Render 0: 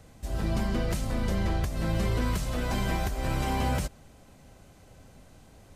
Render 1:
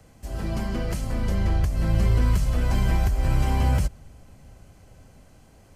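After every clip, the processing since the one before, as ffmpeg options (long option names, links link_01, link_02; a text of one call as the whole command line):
ffmpeg -i in.wav -filter_complex "[0:a]bandreject=frequency=3700:width=9.9,acrossover=split=130|3300[link_01][link_02][link_03];[link_01]dynaudnorm=framelen=220:gausssize=13:maxgain=10dB[link_04];[link_04][link_02][link_03]amix=inputs=3:normalize=0" out.wav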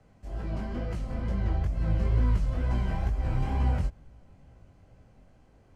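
ffmpeg -i in.wav -af "flanger=delay=16:depth=7.2:speed=2.2,aemphasis=mode=reproduction:type=75fm,volume=-3.5dB" out.wav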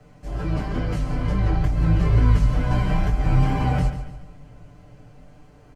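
ffmpeg -i in.wav -filter_complex "[0:a]aecho=1:1:6.8:0.98,asplit=2[link_01][link_02];[link_02]aecho=0:1:143|286|429|572:0.282|0.116|0.0474|0.0194[link_03];[link_01][link_03]amix=inputs=2:normalize=0,volume=7dB" out.wav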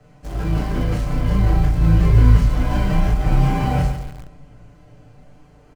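ffmpeg -i in.wav -filter_complex "[0:a]asplit=2[link_01][link_02];[link_02]adelay=36,volume=-3.5dB[link_03];[link_01][link_03]amix=inputs=2:normalize=0,asplit=2[link_04][link_05];[link_05]acrusher=bits=4:mix=0:aa=0.000001,volume=-11.5dB[link_06];[link_04][link_06]amix=inputs=2:normalize=0,volume=-1dB" out.wav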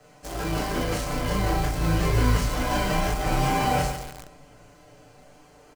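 ffmpeg -i in.wav -af "bass=frequency=250:gain=-13,treble=frequency=4000:gain=7,volume=2dB" out.wav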